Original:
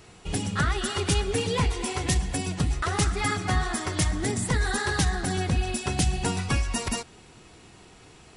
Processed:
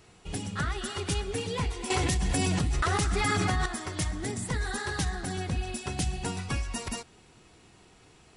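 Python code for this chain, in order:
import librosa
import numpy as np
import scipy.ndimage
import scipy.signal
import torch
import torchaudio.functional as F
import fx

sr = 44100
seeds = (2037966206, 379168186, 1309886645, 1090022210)

y = fx.env_flatten(x, sr, amount_pct=100, at=(1.9, 3.66))
y = y * librosa.db_to_amplitude(-6.0)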